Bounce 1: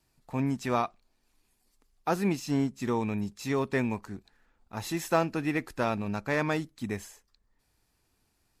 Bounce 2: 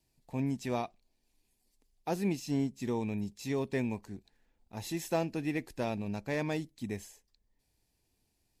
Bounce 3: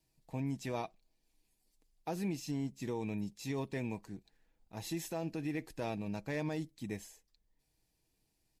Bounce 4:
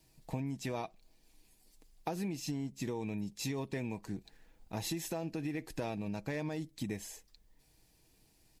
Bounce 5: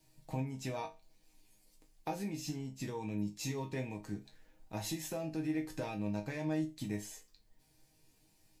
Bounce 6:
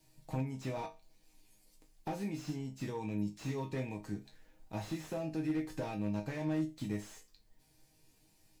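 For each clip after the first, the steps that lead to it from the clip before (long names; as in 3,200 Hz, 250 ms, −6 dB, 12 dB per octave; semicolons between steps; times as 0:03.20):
parametric band 1,300 Hz −13.5 dB 0.68 octaves; level −3.5 dB
comb filter 6.3 ms, depth 35%; brickwall limiter −25.5 dBFS, peak gain reduction 9.5 dB; level −2.5 dB
downward compressor, threshold −46 dBFS, peak gain reduction 13 dB; level +11 dB
resonators tuned to a chord G#2 major, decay 0.26 s; level +11 dB
slew-rate limiting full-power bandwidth 12 Hz; level +1 dB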